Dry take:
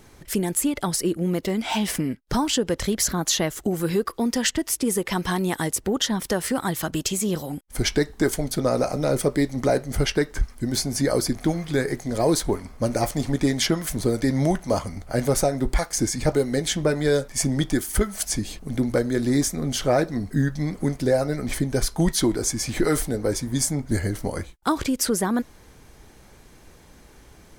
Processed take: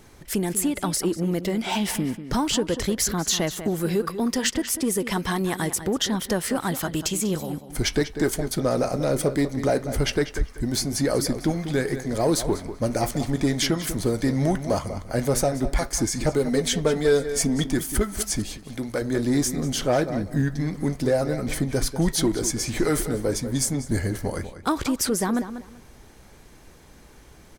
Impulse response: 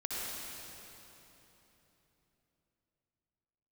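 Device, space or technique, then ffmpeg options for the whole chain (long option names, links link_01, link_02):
parallel distortion: -filter_complex "[0:a]asettb=1/sr,asplit=3[link_01][link_02][link_03];[link_01]atrim=end=16.454[link_04];[link_02]atrim=start=16.45:end=17.64,asetpts=PTS-STARTPTS,afade=type=in:duration=0.004:curve=qsin,afade=type=out:start_time=1.186:duration=0.004:curve=qsin,aecho=1:1:4.4:0.59,atrim=end_sample=52479[link_05];[link_03]atrim=start=17.636[link_06];[link_04][link_05]acrossfade=duration=0.004:curve1=hsin:curve2=qsin[link_07];[link_07][link_06]acrossfade=duration=0.004:curve1=qsin:curve2=hsin,asplit=2[link_08][link_09];[link_09]adelay=193,lowpass=frequency=4300:poles=1,volume=-12dB,asplit=2[link_10][link_11];[link_11]adelay=193,lowpass=frequency=4300:poles=1,volume=0.22,asplit=2[link_12][link_13];[link_13]adelay=193,lowpass=frequency=4300:poles=1,volume=0.22[link_14];[link_08][link_10][link_12][link_14]amix=inputs=4:normalize=0,asettb=1/sr,asplit=3[link_15][link_16][link_17];[link_15]atrim=end=18.574[link_18];[link_16]atrim=start=18.57:end=19.02,asetpts=PTS-STARTPTS,afade=type=in:duration=0.004:curve=qsin,afade=type=out:start_time=0.446:duration=0.004:curve=qsin,lowshelf=frequency=490:gain=-9.5[link_19];[link_17]atrim=start=19.016[link_20];[link_18][link_19]acrossfade=duration=0.004:curve1=hsin:curve2=qsin[link_21];[link_21][link_20]acrossfade=duration=0.004:curve1=qsin:curve2=hsin,asplit=2[link_22][link_23];[link_23]asoftclip=type=hard:threshold=-22dB,volume=-8dB[link_24];[link_22][link_24]amix=inputs=2:normalize=0,volume=-3dB"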